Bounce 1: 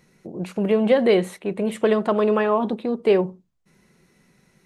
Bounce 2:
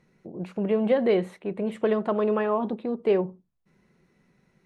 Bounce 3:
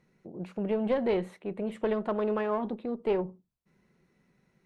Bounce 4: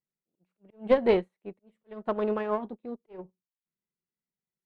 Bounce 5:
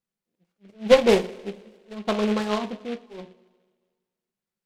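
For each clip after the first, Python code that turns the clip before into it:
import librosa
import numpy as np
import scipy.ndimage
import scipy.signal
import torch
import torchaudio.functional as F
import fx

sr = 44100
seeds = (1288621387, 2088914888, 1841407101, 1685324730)

y1 = fx.lowpass(x, sr, hz=2200.0, slope=6)
y1 = y1 * librosa.db_to_amplitude(-4.5)
y2 = fx.diode_clip(y1, sr, knee_db=-19.0)
y2 = y2 * librosa.db_to_amplitude(-4.0)
y3 = fx.auto_swell(y2, sr, attack_ms=211.0)
y3 = fx.upward_expand(y3, sr, threshold_db=-49.0, expansion=2.5)
y3 = y3 * librosa.db_to_amplitude(8.0)
y4 = fx.rev_double_slope(y3, sr, seeds[0], early_s=0.28, late_s=1.6, knee_db=-20, drr_db=3.5)
y4 = fx.noise_mod_delay(y4, sr, seeds[1], noise_hz=2300.0, depth_ms=0.068)
y4 = y4 * librosa.db_to_amplitude(3.5)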